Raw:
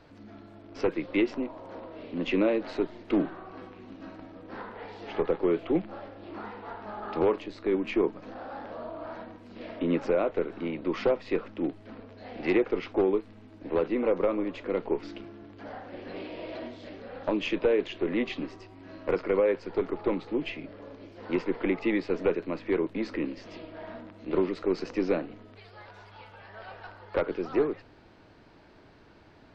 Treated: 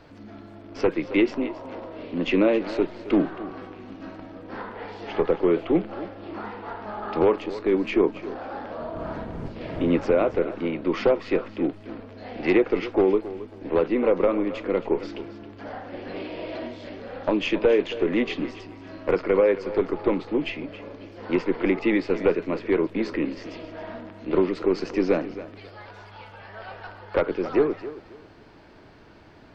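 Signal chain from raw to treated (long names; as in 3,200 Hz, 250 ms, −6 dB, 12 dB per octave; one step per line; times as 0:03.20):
0:08.80–0:10.35: wind on the microphone 300 Hz −36 dBFS
notch filter 3,900 Hz, Q 26
feedback echo with a high-pass in the loop 271 ms, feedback 27%, high-pass 190 Hz, level −14 dB
level +5 dB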